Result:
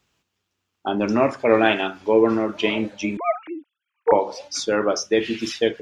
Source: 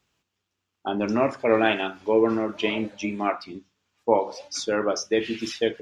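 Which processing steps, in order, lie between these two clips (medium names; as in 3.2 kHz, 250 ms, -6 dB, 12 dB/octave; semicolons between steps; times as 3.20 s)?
3.17–4.12 s: formants replaced by sine waves; trim +3.5 dB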